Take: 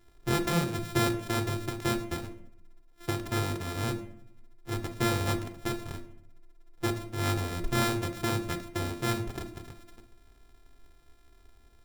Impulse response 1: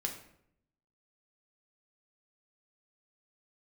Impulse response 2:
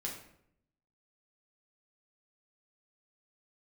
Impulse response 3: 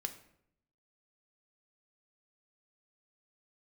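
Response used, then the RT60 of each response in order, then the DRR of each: 3; 0.70, 0.70, 0.70 seconds; 2.0, −2.5, 7.0 decibels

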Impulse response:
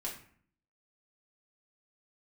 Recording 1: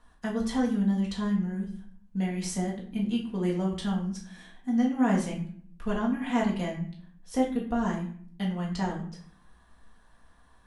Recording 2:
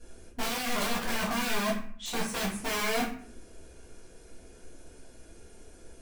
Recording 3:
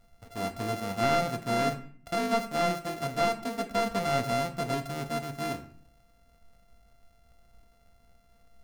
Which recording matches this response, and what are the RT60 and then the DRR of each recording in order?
1; 0.55, 0.55, 0.55 seconds; −4.0, −13.0, 5.5 decibels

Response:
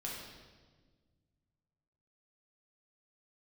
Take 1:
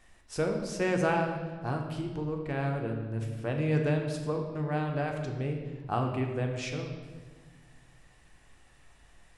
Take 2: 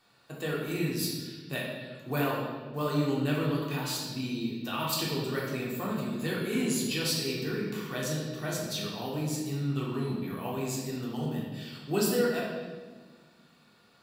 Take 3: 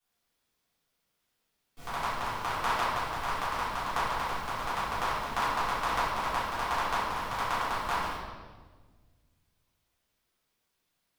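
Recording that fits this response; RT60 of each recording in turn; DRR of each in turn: 2; 1.5, 1.5, 1.5 seconds; 2.0, −4.5, −14.0 decibels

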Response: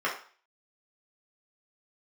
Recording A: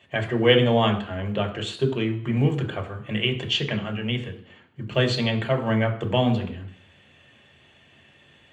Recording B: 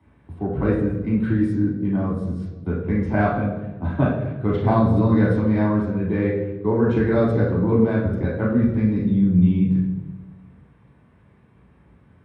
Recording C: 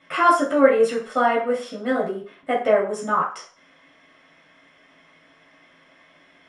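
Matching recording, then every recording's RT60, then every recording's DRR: C; 0.60, 1.2, 0.40 seconds; 2.0, −3.5, −5.5 decibels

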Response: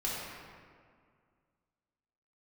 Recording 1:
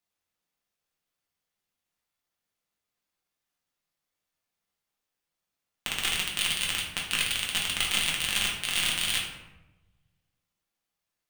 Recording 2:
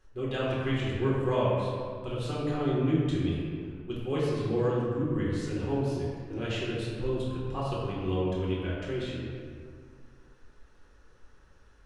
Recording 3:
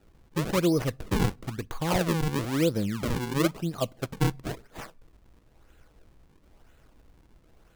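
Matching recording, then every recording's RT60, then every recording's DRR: 2; 1.0 s, 2.0 s, non-exponential decay; −3.0, −6.5, 18.0 decibels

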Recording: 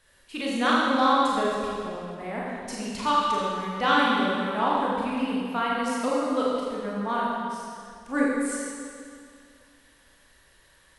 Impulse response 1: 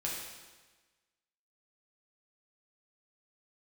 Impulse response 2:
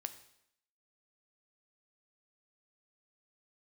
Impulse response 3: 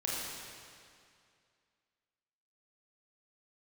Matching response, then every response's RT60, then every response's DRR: 3; 1.3, 0.75, 2.3 seconds; −4.5, 9.0, −6.0 decibels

